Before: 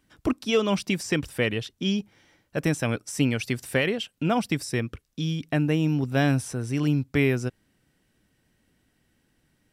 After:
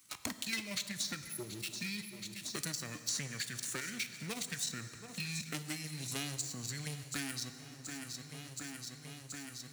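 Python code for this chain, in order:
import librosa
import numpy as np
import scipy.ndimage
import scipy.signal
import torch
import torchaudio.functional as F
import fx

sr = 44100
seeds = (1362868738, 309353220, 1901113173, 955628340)

p1 = fx.high_shelf(x, sr, hz=5400.0, db=4.5)
p2 = fx.level_steps(p1, sr, step_db=11)
p3 = fx.spec_erase(p2, sr, start_s=1.24, length_s=0.39, low_hz=900.0, high_hz=10000.0)
p4 = fx.formant_shift(p3, sr, semitones=-5)
p5 = fx.leveller(p4, sr, passes=3)
p6 = scipy.signal.sosfilt(scipy.signal.butter(2, 93.0, 'highpass', fs=sr, output='sos'), p5)
p7 = F.preemphasis(torch.from_numpy(p6), 0.9).numpy()
p8 = p7 + fx.echo_feedback(p7, sr, ms=727, feedback_pct=48, wet_db=-20, dry=0)
p9 = fx.rev_plate(p8, sr, seeds[0], rt60_s=1.3, hf_ratio=0.8, predelay_ms=0, drr_db=10.0)
p10 = fx.band_squash(p9, sr, depth_pct=100)
y = p10 * librosa.db_to_amplitude(-4.5)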